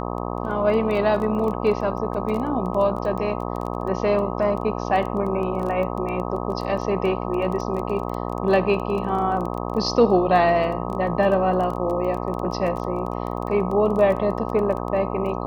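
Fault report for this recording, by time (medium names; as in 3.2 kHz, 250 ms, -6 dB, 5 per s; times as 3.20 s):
buzz 60 Hz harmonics 21 -28 dBFS
crackle 15 per s -28 dBFS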